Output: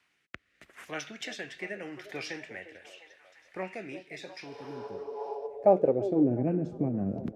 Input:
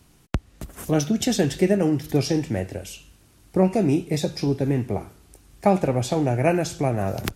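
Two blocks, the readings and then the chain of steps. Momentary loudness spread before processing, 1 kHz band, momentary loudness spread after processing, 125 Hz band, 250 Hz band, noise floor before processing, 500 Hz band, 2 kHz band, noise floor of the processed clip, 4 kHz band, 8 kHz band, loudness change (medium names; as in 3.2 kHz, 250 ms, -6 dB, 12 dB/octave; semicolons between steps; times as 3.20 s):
12 LU, -8.5 dB, 23 LU, -14.0 dB, -9.5 dB, -56 dBFS, -6.5 dB, -6.0 dB, -73 dBFS, -12.0 dB, -18.0 dB, -8.0 dB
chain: spectral replace 4.53–5.44 s, 410–9700 Hz before; rotary cabinet horn 0.8 Hz, later 6.3 Hz, at 4.83 s; repeats whose band climbs or falls 350 ms, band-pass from 470 Hz, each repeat 0.7 oct, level -8.5 dB; band-pass sweep 2 kHz -> 230 Hz, 4.53–6.50 s; trim +3 dB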